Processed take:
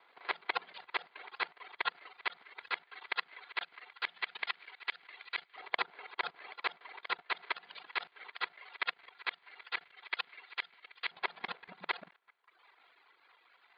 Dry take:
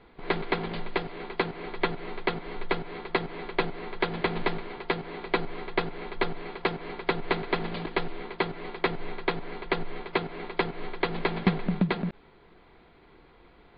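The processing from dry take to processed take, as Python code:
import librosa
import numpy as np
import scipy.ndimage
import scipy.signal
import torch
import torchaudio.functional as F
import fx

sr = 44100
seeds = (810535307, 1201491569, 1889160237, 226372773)

y = fx.local_reverse(x, sr, ms=41.0)
y = fx.echo_banded(y, sr, ms=194, feedback_pct=45, hz=1500.0, wet_db=-18.0)
y = fx.dereverb_blind(y, sr, rt60_s=1.1)
y = fx.level_steps(y, sr, step_db=16)
y = fx.filter_lfo_highpass(y, sr, shape='saw_up', hz=0.18, low_hz=900.0, high_hz=2000.0, q=0.88)
y = F.gain(torch.from_numpy(y), 4.5).numpy()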